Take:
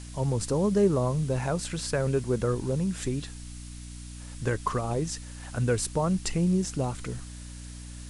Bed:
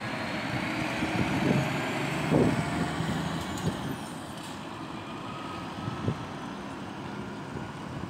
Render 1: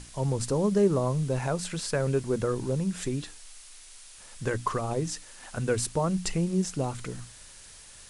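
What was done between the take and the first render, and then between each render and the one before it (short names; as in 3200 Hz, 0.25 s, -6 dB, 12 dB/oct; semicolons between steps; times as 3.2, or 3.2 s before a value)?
notches 60/120/180/240/300 Hz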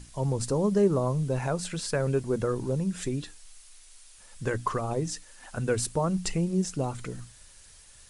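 denoiser 6 dB, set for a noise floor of -49 dBFS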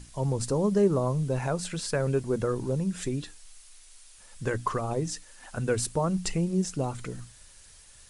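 nothing audible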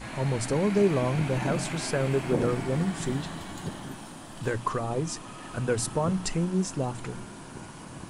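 add bed -5.5 dB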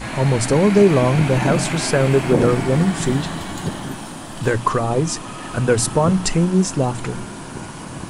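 gain +10.5 dB; limiter -3 dBFS, peak gain reduction 1.5 dB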